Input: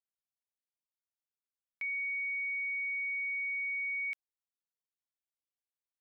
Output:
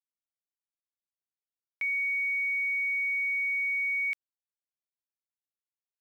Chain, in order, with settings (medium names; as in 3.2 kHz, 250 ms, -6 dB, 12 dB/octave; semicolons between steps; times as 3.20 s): bit crusher 11-bit; trim +6 dB